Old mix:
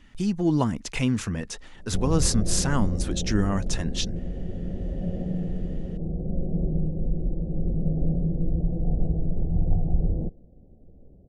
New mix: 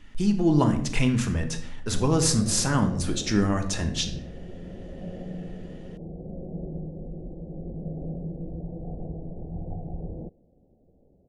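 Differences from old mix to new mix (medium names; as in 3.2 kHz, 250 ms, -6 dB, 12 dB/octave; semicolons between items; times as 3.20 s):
background: add tilt EQ +3 dB/octave; reverb: on, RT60 0.65 s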